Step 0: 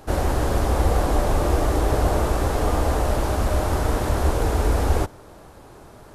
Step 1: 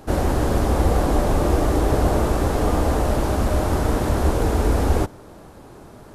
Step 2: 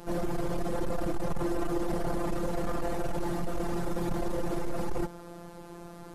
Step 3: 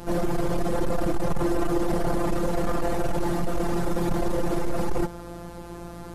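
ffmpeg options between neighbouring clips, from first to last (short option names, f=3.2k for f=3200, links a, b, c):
-af "equalizer=f=220:w=0.8:g=5.5"
-af "afftfilt=real='hypot(re,im)*cos(PI*b)':imag='0':win_size=1024:overlap=0.75,asoftclip=type=tanh:threshold=-24.5dB,volume=1.5dB"
-af "aeval=exprs='val(0)+0.00282*(sin(2*PI*60*n/s)+sin(2*PI*2*60*n/s)/2+sin(2*PI*3*60*n/s)/3+sin(2*PI*4*60*n/s)/4+sin(2*PI*5*60*n/s)/5)':c=same,volume=6dB"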